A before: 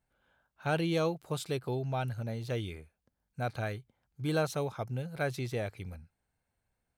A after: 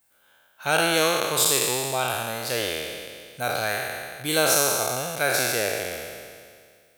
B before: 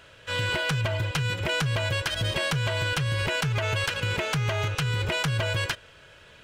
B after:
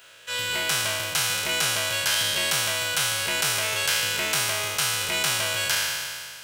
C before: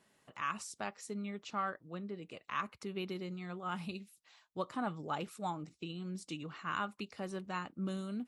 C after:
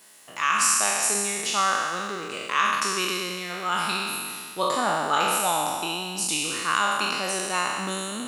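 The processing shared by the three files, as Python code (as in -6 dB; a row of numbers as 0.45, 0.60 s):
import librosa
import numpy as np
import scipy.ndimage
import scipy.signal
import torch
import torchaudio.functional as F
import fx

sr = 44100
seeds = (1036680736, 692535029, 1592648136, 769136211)

y = fx.spec_trails(x, sr, decay_s=2.06)
y = fx.riaa(y, sr, side='recording')
y = y * 10.0 ** (-26 / 20.0) / np.sqrt(np.mean(np.square(y)))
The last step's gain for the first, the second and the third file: +7.0, -4.0, +10.5 dB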